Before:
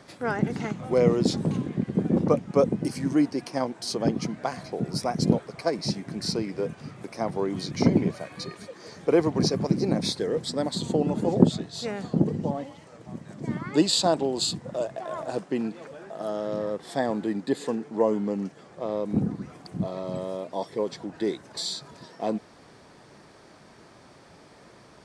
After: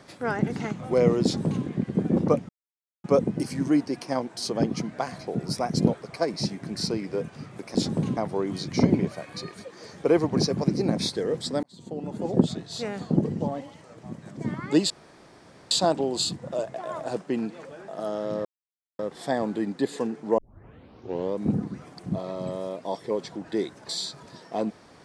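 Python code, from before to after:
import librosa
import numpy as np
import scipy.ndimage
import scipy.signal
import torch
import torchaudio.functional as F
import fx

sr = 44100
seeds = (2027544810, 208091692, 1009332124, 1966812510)

y = fx.edit(x, sr, fx.duplicate(start_s=1.23, length_s=0.42, to_s=7.2),
    fx.insert_silence(at_s=2.49, length_s=0.55),
    fx.fade_in_span(start_s=10.66, length_s=1.08),
    fx.insert_room_tone(at_s=13.93, length_s=0.81),
    fx.insert_silence(at_s=16.67, length_s=0.54),
    fx.tape_start(start_s=18.06, length_s=0.99), tone=tone)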